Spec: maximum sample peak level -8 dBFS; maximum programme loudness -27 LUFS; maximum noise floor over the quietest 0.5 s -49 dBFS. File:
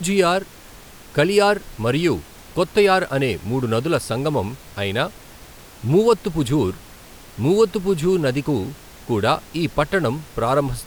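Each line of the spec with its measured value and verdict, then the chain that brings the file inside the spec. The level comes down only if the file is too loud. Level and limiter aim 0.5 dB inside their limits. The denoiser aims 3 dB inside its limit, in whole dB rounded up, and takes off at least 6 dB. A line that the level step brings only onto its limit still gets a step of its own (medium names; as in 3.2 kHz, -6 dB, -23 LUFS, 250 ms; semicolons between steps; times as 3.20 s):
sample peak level -5.0 dBFS: fail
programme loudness -20.5 LUFS: fail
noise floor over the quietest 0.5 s -42 dBFS: fail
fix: noise reduction 6 dB, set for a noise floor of -42 dBFS; trim -7 dB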